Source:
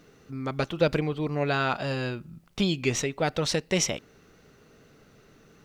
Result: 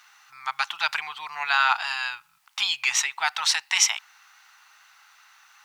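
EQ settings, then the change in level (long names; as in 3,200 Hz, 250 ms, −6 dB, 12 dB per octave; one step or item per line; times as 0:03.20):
elliptic high-pass filter 850 Hz, stop band 40 dB
+8.5 dB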